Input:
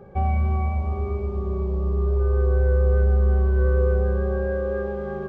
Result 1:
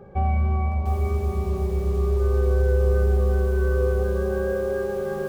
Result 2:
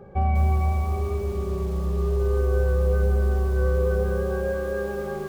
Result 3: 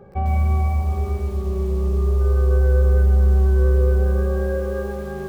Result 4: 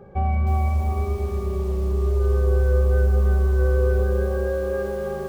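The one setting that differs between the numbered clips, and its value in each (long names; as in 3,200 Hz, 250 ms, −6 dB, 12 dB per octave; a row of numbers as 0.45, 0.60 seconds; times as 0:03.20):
feedback echo at a low word length, delay time: 703, 201, 105, 315 milliseconds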